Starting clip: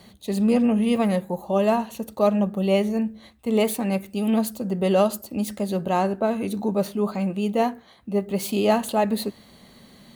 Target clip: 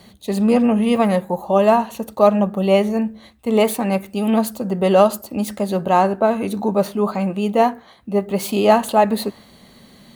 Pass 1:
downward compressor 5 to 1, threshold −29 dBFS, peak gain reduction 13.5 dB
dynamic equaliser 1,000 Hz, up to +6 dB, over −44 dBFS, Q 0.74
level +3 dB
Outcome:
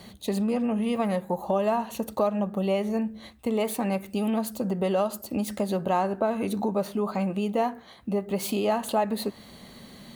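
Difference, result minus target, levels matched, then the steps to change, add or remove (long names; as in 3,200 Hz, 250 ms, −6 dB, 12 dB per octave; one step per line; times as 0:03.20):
downward compressor: peak gain reduction +13.5 dB
remove: downward compressor 5 to 1, threshold −29 dBFS, peak gain reduction 13.5 dB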